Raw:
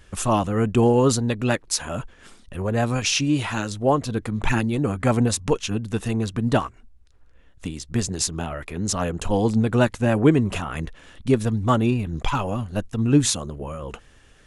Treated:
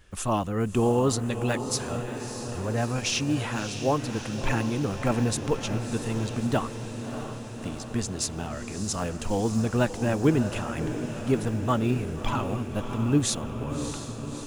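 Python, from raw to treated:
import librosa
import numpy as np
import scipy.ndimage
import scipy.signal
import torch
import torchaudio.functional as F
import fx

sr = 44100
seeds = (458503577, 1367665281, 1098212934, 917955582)

p1 = fx.block_float(x, sr, bits=7)
p2 = p1 + fx.echo_diffused(p1, sr, ms=635, feedback_pct=69, wet_db=-9, dry=0)
y = p2 * librosa.db_to_amplitude(-5.5)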